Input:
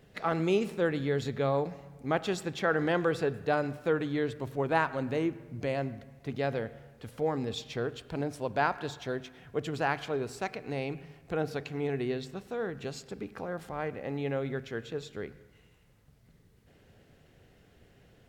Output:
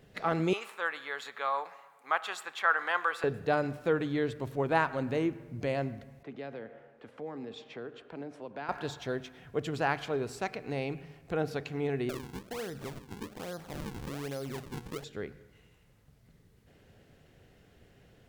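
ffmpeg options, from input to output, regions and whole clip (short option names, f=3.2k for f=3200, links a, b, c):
-filter_complex "[0:a]asettb=1/sr,asplit=3[a][b][c];[a]atrim=end=0.534[d];[b]atrim=start=0.53:end=3.24,asetpts=PTS-STARTPTS,afade=t=in:d=0.004:c=qsin,afade=t=out:st=2.706:d=0.004:c=qsin,highpass=f=1.1k:t=q:w=2.3,equalizer=f=5.4k:w=2.2:g=-6.5[e];[c]atrim=start=3.236[f];[d][e]acrossfade=d=0.004:c1=hsin:c2=qsin[g];[g][f]acrossfade=d=0.004:c1=qsin:c2=hsin,asettb=1/sr,asplit=3[h][i][j];[h]atrim=end=6.234[k];[i]atrim=start=6.23:end=8.69,asetpts=PTS-STARTPTS,afade=t=in:d=0.004:c=qsin,afade=t=out:st=2.456:d=0.004:c=qsin,lowpass=8.9k,acrossover=split=240|3000[l][m][n];[m]acompressor=threshold=-42dB:ratio=3:attack=3.2:release=140:knee=2.83:detection=peak[o];[l][o][n]amix=inputs=3:normalize=0,acrossover=split=230 2600:gain=0.0891 1 0.158[p][q][r];[p][q][r]amix=inputs=3:normalize=0[s];[j]atrim=start=8.686[t];[k][s]acrossfade=d=0.004:c1=hsin:c2=qsin[u];[u][t]acrossfade=d=0.004:c1=qsin:c2=hsin,asettb=1/sr,asplit=3[v][w][x];[v]atrim=end=12.094[y];[w]atrim=start=12.09:end=15.04,asetpts=PTS-STARTPTS,afade=t=in:d=0.004:c=qsin,afade=t=out:st=2.946:d=0.004:c=qsin,lowpass=f=6.5k:w=0.5412,lowpass=f=6.5k:w=1.3066,acrusher=samples=41:mix=1:aa=0.000001:lfo=1:lforange=65.6:lforate=1.2,acompressor=threshold=-36dB:ratio=2.5:attack=3.2:release=140:knee=1:detection=peak[z];[x]atrim=start=15.036[aa];[y][z]acrossfade=d=0.004:c1=hsin:c2=qsin[ab];[ab][aa]acrossfade=d=0.004:c1=qsin:c2=hsin"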